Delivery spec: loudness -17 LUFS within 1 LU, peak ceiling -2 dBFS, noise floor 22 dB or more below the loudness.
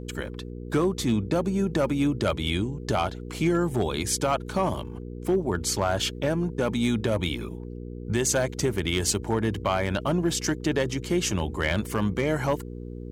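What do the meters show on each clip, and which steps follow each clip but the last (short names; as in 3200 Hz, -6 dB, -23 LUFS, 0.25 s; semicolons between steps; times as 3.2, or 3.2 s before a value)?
clipped 0.5%; flat tops at -15.5 dBFS; hum 60 Hz; harmonics up to 480 Hz; hum level -35 dBFS; loudness -26.5 LUFS; peak -15.5 dBFS; loudness target -17.0 LUFS
-> clip repair -15.5 dBFS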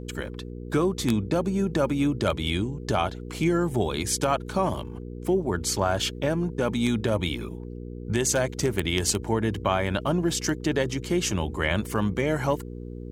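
clipped 0.0%; hum 60 Hz; harmonics up to 480 Hz; hum level -35 dBFS
-> de-hum 60 Hz, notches 8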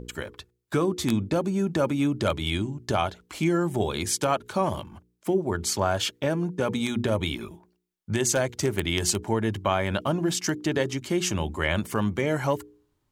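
hum none; loudness -26.5 LUFS; peak -6.5 dBFS; loudness target -17.0 LUFS
-> gain +9.5 dB; limiter -2 dBFS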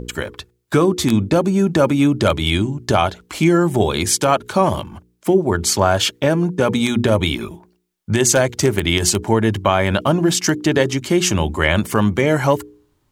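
loudness -17.5 LUFS; peak -2.0 dBFS; noise floor -64 dBFS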